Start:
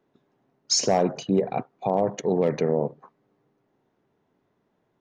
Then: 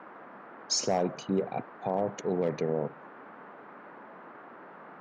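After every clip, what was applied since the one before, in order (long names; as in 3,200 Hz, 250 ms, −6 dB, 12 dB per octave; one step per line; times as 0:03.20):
noise in a band 180–1,500 Hz −42 dBFS
level −6.5 dB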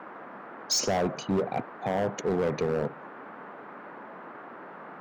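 hard clipping −26 dBFS, distortion −10 dB
level +4.5 dB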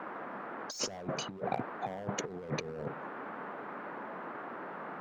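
compressor whose output falls as the input rises −32 dBFS, ratio −0.5
level −3.5 dB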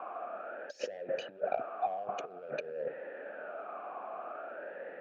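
formant filter swept between two vowels a-e 0.5 Hz
level +9.5 dB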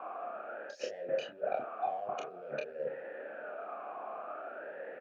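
ambience of single reflections 28 ms −4.5 dB, 41 ms −8 dB
level −2 dB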